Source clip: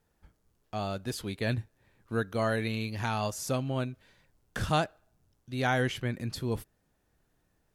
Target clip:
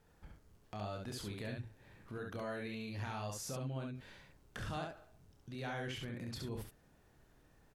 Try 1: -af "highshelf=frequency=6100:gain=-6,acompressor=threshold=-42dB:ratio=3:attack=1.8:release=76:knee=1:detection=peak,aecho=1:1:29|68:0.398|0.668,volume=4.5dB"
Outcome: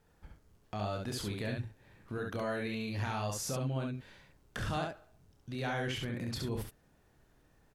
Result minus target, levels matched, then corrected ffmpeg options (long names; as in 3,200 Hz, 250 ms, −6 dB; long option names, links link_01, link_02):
downward compressor: peak gain reduction −6.5 dB
-af "highshelf=frequency=6100:gain=-6,acompressor=threshold=-51.5dB:ratio=3:attack=1.8:release=76:knee=1:detection=peak,aecho=1:1:29|68:0.398|0.668,volume=4.5dB"